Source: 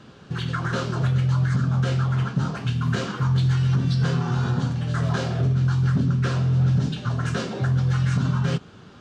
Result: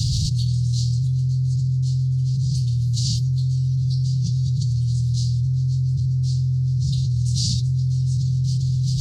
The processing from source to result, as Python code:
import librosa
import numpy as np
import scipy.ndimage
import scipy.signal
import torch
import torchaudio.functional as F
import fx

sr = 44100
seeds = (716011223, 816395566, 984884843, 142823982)

y = scipy.signal.sosfilt(scipy.signal.cheby1(4, 1.0, [130.0, 4400.0], 'bandstop', fs=sr, output='sos'), x)
y = y + 10.0 ** (-14.0 / 20.0) * np.pad(y, (int(394 * sr / 1000.0), 0))[:len(y)]
y = fx.env_flatten(y, sr, amount_pct=100)
y = y * librosa.db_to_amplitude(-2.0)